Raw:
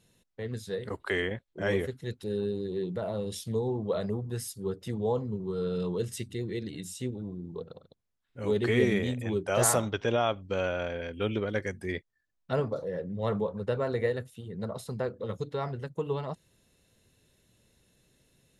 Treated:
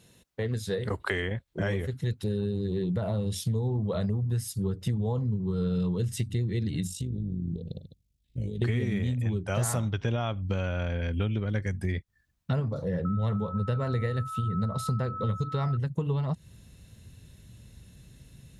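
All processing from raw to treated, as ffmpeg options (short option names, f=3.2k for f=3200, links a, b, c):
-filter_complex "[0:a]asettb=1/sr,asplit=3[a][b][c];[a]atrim=end=6.874[d];[b]atrim=start=6.87:end=8.62,asetpts=PTS-STARTPTS,afade=t=in:d=0.004:c=qsin,afade=t=out:st=1.746:d=0.004:c=qsin,acompressor=threshold=-39dB:ratio=10:attack=3.2:release=140:knee=1:detection=peak,tremolo=f=51:d=0.571,asuperstop=centerf=1200:order=4:qfactor=0.54[e];[c]atrim=start=8.616[f];[d][e]acrossfade=d=0.004:c1=hsin:c2=qsin[g];[g][f]acrossfade=d=0.004:c1=qsin:c2=hsin,asettb=1/sr,asplit=3[h][i][j];[h]atrim=end=13.054[k];[i]atrim=start=13.05:end=15.77,asetpts=PTS-STARTPTS,afade=t=in:d=0.004:c=qsin,afade=t=out:st=2.716:d=0.004:c=qsin,equalizer=f=5.7k:w=0.48:g=3,aeval=exprs='val(0)+0.0141*sin(2*PI*1300*n/s)':c=same[l];[j]atrim=start=15.766[m];[k][l]acrossfade=d=0.004:c1=hsin:c2=qsin[n];[n][m]acrossfade=d=0.004:c1=qsin:c2=hsin,highpass=41,asubboost=boost=5.5:cutoff=170,acompressor=threshold=-34dB:ratio=6,volume=8dB"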